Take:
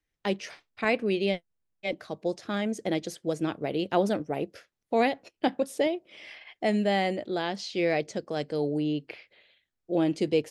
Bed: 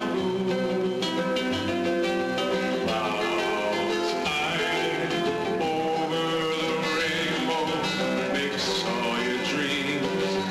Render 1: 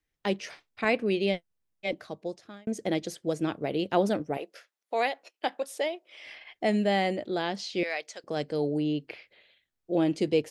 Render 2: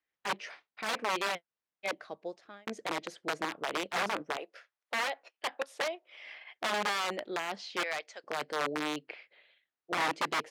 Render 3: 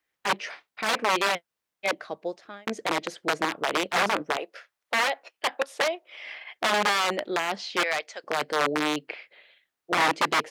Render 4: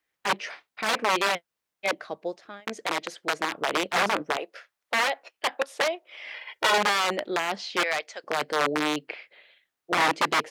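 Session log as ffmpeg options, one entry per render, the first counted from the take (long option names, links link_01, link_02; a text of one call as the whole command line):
ffmpeg -i in.wav -filter_complex "[0:a]asettb=1/sr,asplit=3[link_01][link_02][link_03];[link_01]atrim=end=4.374[link_04];[link_02]atrim=start=4.37:end=6.26,asetpts=PTS-STARTPTS,afade=type=in:duration=0.004:curve=qsin,afade=type=out:start_time=1.886:duration=0.004:curve=qsin,highpass=590[link_05];[link_03]atrim=start=6.256[link_06];[link_04][link_05]acrossfade=duration=0.004:curve1=hsin:curve2=qsin[link_07];[link_07][link_06]acrossfade=duration=0.004:curve1=qsin:curve2=hsin,asettb=1/sr,asplit=3[link_08][link_09][link_10];[link_08]atrim=end=7.834[link_11];[link_09]atrim=start=7.83:end=8.24,asetpts=PTS-STARTPTS,afade=type=in:duration=0.004:curve=qsin,afade=type=out:start_time=0.406:duration=0.004:curve=qsin,highpass=960[link_12];[link_10]atrim=start=8.236[link_13];[link_11][link_12]acrossfade=duration=0.004:curve1=hsin:curve2=qsin[link_14];[link_14][link_13]acrossfade=duration=0.004:curve1=qsin:curve2=hsin,asplit=2[link_15][link_16];[link_15]atrim=end=2.67,asetpts=PTS-STARTPTS,afade=type=out:start_time=1.93:duration=0.74[link_17];[link_16]atrim=start=2.67,asetpts=PTS-STARTPTS,afade=type=in:duration=0.004:curve=hsin[link_18];[link_17][link_18]concat=n=2:v=0:a=1" out.wav
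ffmpeg -i in.wav -af "aeval=exprs='(mod(12.6*val(0)+1,2)-1)/12.6':channel_layout=same,bandpass=frequency=1300:width_type=q:width=0.6:csg=0" out.wav
ffmpeg -i in.wav -af "volume=8dB" out.wav
ffmpeg -i in.wav -filter_complex "[0:a]asettb=1/sr,asplit=3[link_01][link_02][link_03];[link_01]atrim=end=2.604[link_04];[link_02]atrim=start=2.6:end=3.52,asetpts=PTS-STARTPTS,afade=type=in:duration=0.004:curve=qsin,afade=type=out:start_time=0.916:duration=0.004:curve=qsin,lowshelf=frequency=480:gain=-7[link_05];[link_03]atrim=start=3.516[link_06];[link_04][link_05]acrossfade=duration=0.004:curve1=hsin:curve2=qsin[link_07];[link_07][link_06]acrossfade=duration=0.004:curve1=qsin:curve2=hsin,asettb=1/sr,asplit=3[link_08][link_09][link_10];[link_08]atrim=end=6.344[link_11];[link_09]atrim=start=6.34:end=6.78,asetpts=PTS-STARTPTS,afade=type=in:duration=0.004:curve=qsin,afade=type=out:start_time=0.436:duration=0.004:curve=qsin,aecho=1:1:2.1:0.99,atrim=end_sample=19404[link_12];[link_10]atrim=start=6.776[link_13];[link_11][link_12]acrossfade=duration=0.004:curve1=hsin:curve2=qsin[link_14];[link_14][link_13]acrossfade=duration=0.004:curve1=qsin:curve2=hsin" out.wav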